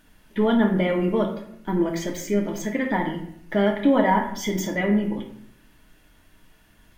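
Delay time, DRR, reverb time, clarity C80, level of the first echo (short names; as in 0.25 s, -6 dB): none, 2.0 dB, 0.70 s, 10.5 dB, none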